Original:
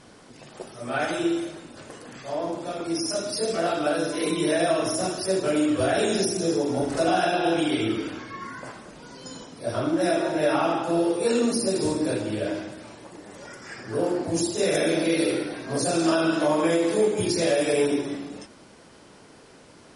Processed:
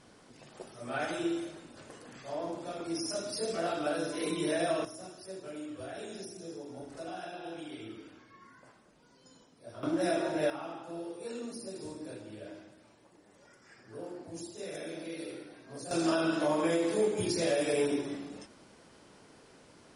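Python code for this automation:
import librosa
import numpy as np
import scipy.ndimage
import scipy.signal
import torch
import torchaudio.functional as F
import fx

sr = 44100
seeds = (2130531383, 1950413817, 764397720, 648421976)

y = fx.gain(x, sr, db=fx.steps((0.0, -8.0), (4.85, -19.5), (9.83, -7.0), (10.5, -18.0), (15.91, -7.0)))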